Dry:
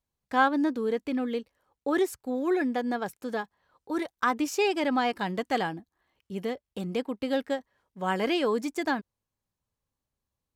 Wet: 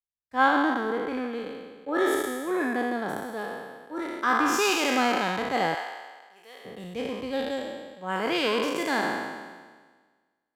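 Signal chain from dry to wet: spectral sustain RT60 2.52 s; 5.74–6.65 s: high-pass 720 Hz 12 dB/octave; three bands expanded up and down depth 70%; trim -3 dB

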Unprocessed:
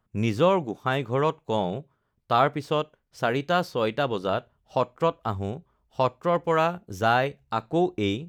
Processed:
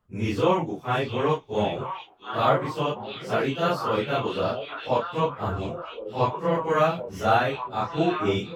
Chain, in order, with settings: phase randomisation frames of 100 ms; repeats whose band climbs or falls 672 ms, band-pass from 3.3 kHz, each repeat -1.4 oct, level -3 dB; wide varispeed 0.969×

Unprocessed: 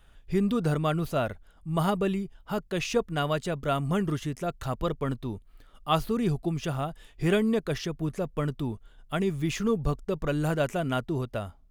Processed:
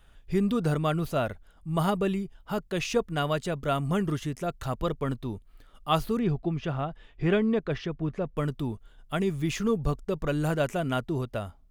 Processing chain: 6.19–8.37 s: low-pass 3.1 kHz 12 dB/octave

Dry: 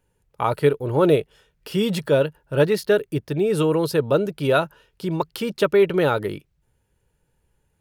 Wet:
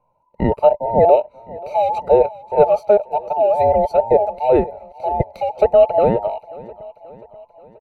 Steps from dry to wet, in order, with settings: every band turned upside down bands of 1 kHz; boxcar filter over 26 samples; on a send: feedback delay 533 ms, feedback 56%, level -20 dB; on the sum: trim +7 dB

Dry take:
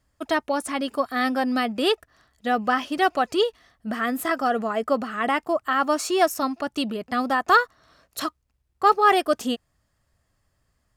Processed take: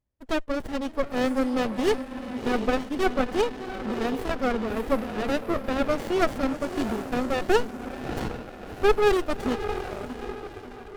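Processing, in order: echo that smears into a reverb 667 ms, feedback 57%, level -7.5 dB; spectral noise reduction 12 dB; reverberation, pre-delay 60 ms, DRR 39.5 dB; sliding maximum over 33 samples; trim -1 dB

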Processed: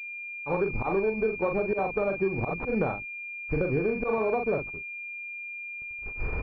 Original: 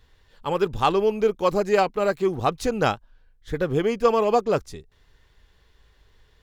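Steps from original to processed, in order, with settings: recorder AGC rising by 16 dB/s; mains buzz 50 Hz, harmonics 8, -49 dBFS -1 dB/octave; doubling 41 ms -6 dB; gate -30 dBFS, range -50 dB; slow attack 111 ms; compression, threshold -23 dBFS, peak gain reduction 9 dB; class-D stage that switches slowly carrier 2.4 kHz

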